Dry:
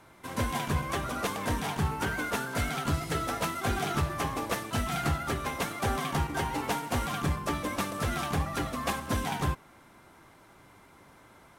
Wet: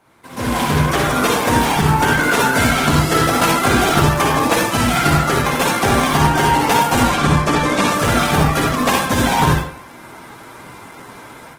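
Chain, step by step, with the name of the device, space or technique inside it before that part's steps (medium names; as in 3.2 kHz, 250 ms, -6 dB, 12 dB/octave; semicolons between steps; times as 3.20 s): 7.03–7.88 s: low-pass 9.1 kHz 12 dB/octave; far-field microphone of a smart speaker (reverberation RT60 0.55 s, pre-delay 48 ms, DRR -1 dB; high-pass 160 Hz 6 dB/octave; level rider gain up to 16 dB; Opus 16 kbps 48 kHz)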